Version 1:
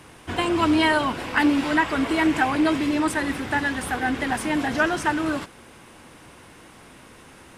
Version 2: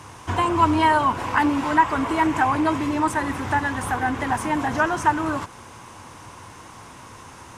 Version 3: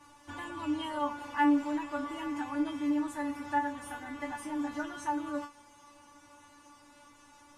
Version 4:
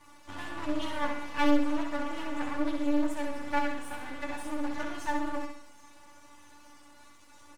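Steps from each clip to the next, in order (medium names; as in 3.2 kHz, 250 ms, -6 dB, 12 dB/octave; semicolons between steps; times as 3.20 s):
dynamic bell 4.9 kHz, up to -7 dB, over -44 dBFS, Q 0.87; in parallel at -2.5 dB: compression, threshold -29 dBFS, peak gain reduction 13 dB; on the sum: fifteen-band graphic EQ 100 Hz +11 dB, 1 kHz +11 dB, 6.3 kHz +9 dB; trim -4.5 dB
feedback comb 290 Hz, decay 0.23 s, harmonics all, mix 100%; trim -1 dB
half-wave rectifier; feedback delay 65 ms, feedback 48%, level -5 dB; loudspeaker Doppler distortion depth 0.42 ms; trim +4 dB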